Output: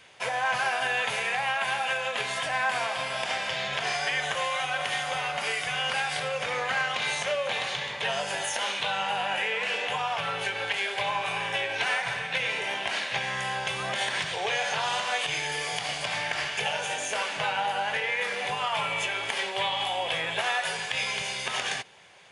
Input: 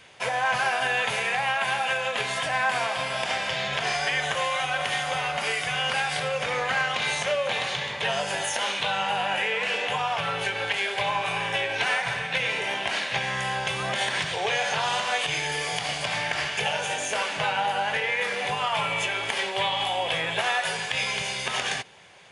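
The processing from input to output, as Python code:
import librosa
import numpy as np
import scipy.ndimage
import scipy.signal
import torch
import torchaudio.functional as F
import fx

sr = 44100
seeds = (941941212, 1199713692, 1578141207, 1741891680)

y = fx.low_shelf(x, sr, hz=320.0, db=-4.0)
y = y * librosa.db_to_amplitude(-2.0)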